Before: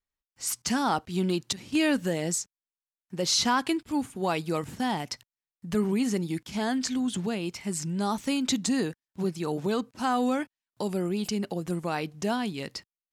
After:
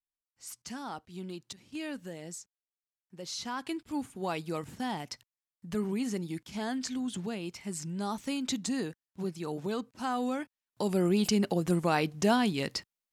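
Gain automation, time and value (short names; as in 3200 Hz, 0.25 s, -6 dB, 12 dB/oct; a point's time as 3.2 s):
3.43 s -14 dB
3.85 s -6 dB
10.41 s -6 dB
11.09 s +3 dB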